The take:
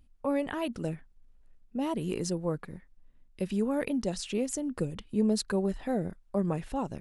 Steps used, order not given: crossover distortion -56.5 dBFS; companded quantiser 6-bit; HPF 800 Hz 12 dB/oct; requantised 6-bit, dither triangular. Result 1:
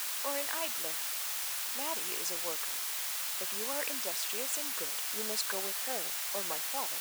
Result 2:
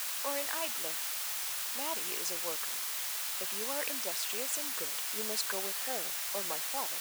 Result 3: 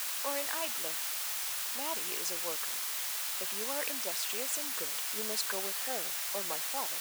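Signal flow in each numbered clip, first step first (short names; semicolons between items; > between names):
companded quantiser > crossover distortion > requantised > HPF; requantised > crossover distortion > HPF > companded quantiser; requantised > companded quantiser > crossover distortion > HPF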